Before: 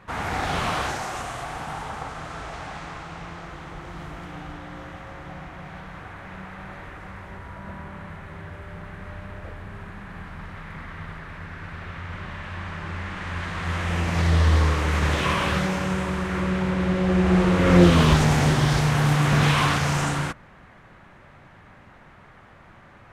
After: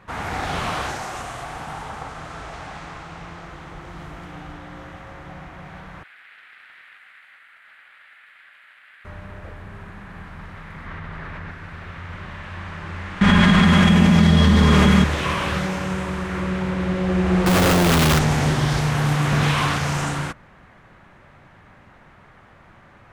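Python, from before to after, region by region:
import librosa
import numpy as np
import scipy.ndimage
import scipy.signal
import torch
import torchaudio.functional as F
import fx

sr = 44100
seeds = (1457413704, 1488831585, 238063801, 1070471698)

y = fx.chain(x, sr, fx.highpass(hz=1100.0, slope=24),
    fx.fixed_phaser(hz=2400.0, stages=4),
    fx.doppler_dist(depth_ms=0.14), at=(6.03, 9.05))
y = fx.chain(y, sr, fx.high_shelf(hz=7300.0, db=-12.0),
    fx.env_flatten(amount_pct=100), at=(10.86, 11.51))
y = fx.chain(y, sr, fx.comb(ms=4.9, depth=0.46),
    fx.small_body(hz=(210.0, 3300.0), ring_ms=85, db=18),
    fx.env_flatten(amount_pct=100), at=(13.21, 15.04))
y = fx.chain(y, sr, fx.highpass(hz=47.0, slope=12),
    fx.schmitt(flips_db=-32.0), at=(17.46, 18.19))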